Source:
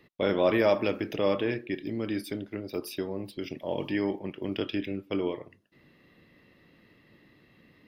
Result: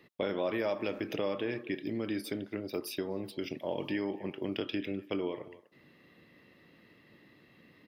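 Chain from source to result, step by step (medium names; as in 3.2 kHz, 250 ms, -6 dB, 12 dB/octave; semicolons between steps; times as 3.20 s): high-pass 120 Hz 6 dB/octave; speakerphone echo 250 ms, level -21 dB; compression 4:1, threshold -30 dBFS, peak gain reduction 10 dB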